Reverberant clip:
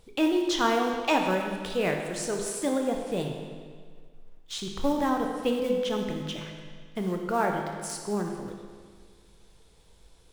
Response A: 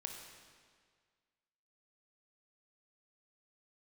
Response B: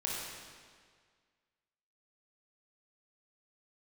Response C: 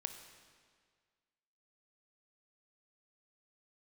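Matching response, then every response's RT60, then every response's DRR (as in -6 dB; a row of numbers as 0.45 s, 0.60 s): A; 1.8 s, 1.8 s, 1.8 s; 2.0 dB, -4.5 dB, 6.5 dB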